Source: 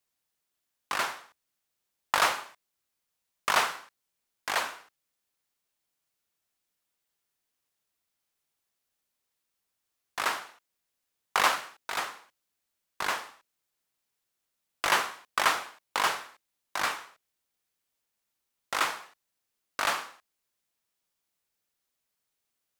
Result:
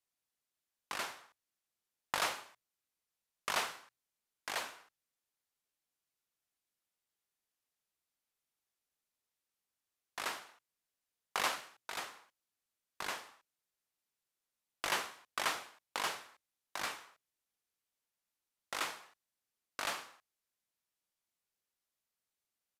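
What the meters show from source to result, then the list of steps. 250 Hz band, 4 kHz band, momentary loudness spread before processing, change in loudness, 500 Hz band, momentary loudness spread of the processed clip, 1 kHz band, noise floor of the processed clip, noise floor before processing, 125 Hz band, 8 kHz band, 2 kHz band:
-7.5 dB, -8.0 dB, 15 LU, -9.5 dB, -8.5 dB, 15 LU, -11.0 dB, under -85 dBFS, -83 dBFS, -7.5 dB, -7.0 dB, -10.0 dB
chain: dynamic EQ 1200 Hz, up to -5 dB, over -39 dBFS, Q 0.86; downsampling 32000 Hz; notches 60/120 Hz; gain -7 dB

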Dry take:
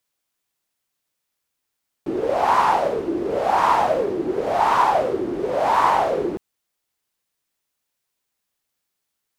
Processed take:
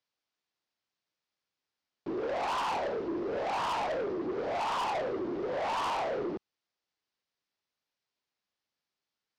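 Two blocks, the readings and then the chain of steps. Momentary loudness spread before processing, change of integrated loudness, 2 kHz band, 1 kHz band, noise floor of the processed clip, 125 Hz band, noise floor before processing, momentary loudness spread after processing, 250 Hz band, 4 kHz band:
8 LU, -12.5 dB, -10.5 dB, -14.0 dB, under -85 dBFS, -11.5 dB, -79 dBFS, 5 LU, -10.0 dB, -5.5 dB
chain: Chebyshev low-pass 5200 Hz, order 3; low shelf 62 Hz -10.5 dB; soft clip -24 dBFS, distortion -7 dB; gain -5.5 dB

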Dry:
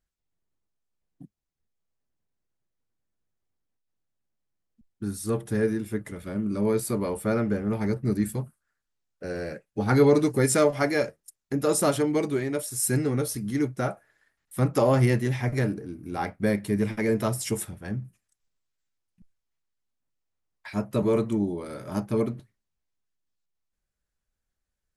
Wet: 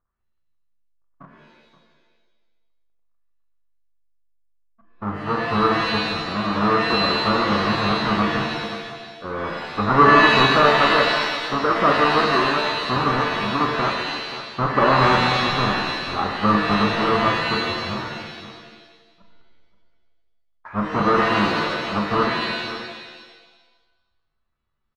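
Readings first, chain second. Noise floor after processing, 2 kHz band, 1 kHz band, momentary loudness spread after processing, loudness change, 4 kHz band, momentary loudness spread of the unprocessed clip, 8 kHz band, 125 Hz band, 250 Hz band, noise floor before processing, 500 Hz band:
-68 dBFS, +15.5 dB, +17.0 dB, 15 LU, +7.0 dB, +19.0 dB, 13 LU, n/a, 0.0 dB, +3.0 dB, -83 dBFS, +3.0 dB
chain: half-waves squared off; synth low-pass 1200 Hz, resonance Q 6.2; bell 120 Hz -4.5 dB 0.46 oct; on a send: echo 0.527 s -14.5 dB; on the sum: shimmer reverb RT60 1.1 s, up +7 st, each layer -2 dB, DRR 2.5 dB; gain -4 dB

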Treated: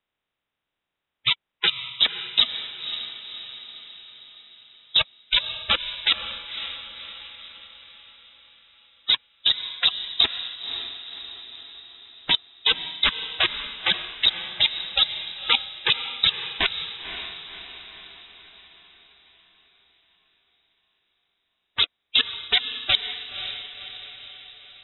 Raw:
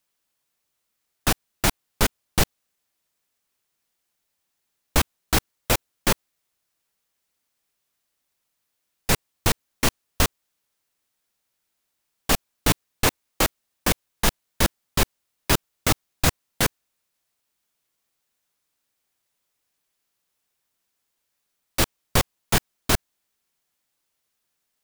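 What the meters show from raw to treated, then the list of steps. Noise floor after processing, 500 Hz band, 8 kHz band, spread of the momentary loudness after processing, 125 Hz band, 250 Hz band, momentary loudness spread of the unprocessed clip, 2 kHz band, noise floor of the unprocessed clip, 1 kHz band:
-84 dBFS, -11.0 dB, under -40 dB, 18 LU, -18.5 dB, -16.0 dB, 2 LU, +1.5 dB, -78 dBFS, -6.0 dB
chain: bin magnitudes rounded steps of 30 dB; inverted band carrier 3800 Hz; diffused feedback echo 0.535 s, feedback 52%, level -9.5 dB

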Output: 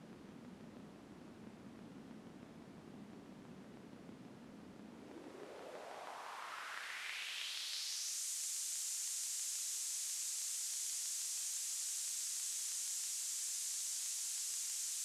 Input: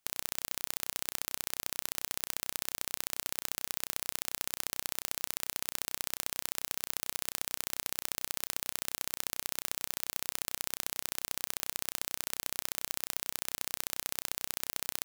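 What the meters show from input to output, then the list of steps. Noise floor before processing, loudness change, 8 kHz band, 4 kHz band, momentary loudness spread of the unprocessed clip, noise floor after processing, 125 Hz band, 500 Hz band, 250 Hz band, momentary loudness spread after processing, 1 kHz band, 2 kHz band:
-79 dBFS, -4.5 dB, -1.5 dB, -6.0 dB, 1 LU, -57 dBFS, -7.0 dB, -7.5 dB, -2.0 dB, 17 LU, -9.0 dB, -9.0 dB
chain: delta modulation 64 kbps, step -32.5 dBFS; band-pass sweep 220 Hz -> 7100 Hz, 4.87–8.24; gain +4 dB

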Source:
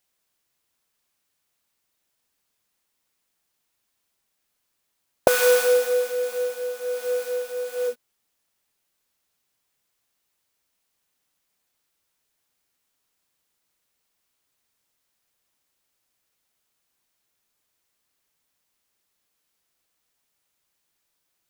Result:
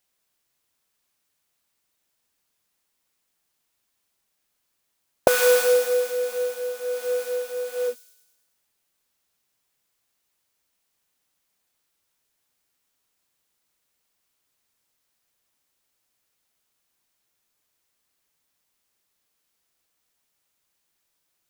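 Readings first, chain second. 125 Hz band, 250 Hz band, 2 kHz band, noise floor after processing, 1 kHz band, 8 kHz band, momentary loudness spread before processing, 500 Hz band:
n/a, 0.0 dB, -0.5 dB, -76 dBFS, 0.0 dB, +0.5 dB, 12 LU, 0.0 dB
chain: thin delay 0.108 s, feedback 55%, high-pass 4600 Hz, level -9 dB

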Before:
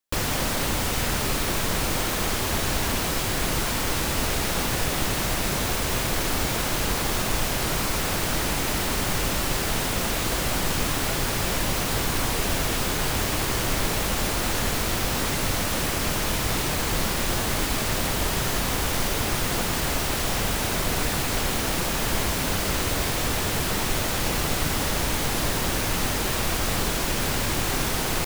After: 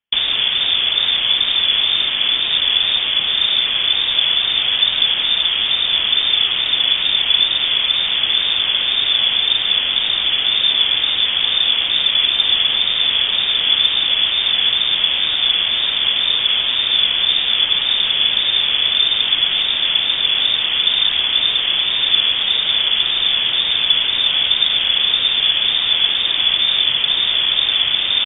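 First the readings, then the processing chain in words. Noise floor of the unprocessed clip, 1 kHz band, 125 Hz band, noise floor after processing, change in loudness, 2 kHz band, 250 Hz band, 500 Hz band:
-26 dBFS, -4.0 dB, under -10 dB, -20 dBFS, +11.0 dB, +6.0 dB, under -10 dB, -8.5 dB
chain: tilt shelf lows +8.5 dB, about 1400 Hz; inverted band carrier 3500 Hz; wow and flutter 37 cents; air absorption 180 m; gain +5 dB

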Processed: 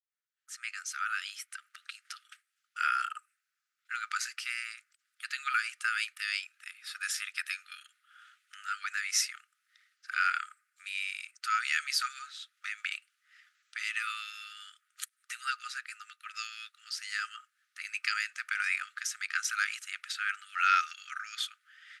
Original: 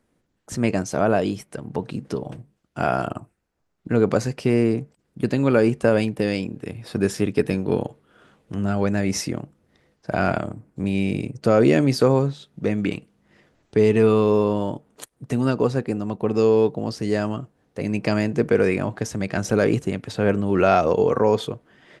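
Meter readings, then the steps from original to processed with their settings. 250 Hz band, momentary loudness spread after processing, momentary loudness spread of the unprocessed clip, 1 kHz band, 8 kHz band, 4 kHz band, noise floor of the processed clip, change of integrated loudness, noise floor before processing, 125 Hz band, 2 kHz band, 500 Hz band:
under -40 dB, 17 LU, 14 LU, -7.5 dB, -0.5 dB, 0.0 dB, -84 dBFS, -12.0 dB, -71 dBFS, under -40 dB, 0.0 dB, under -40 dB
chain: opening faded in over 1.37 s; brick-wall FIR high-pass 1200 Hz

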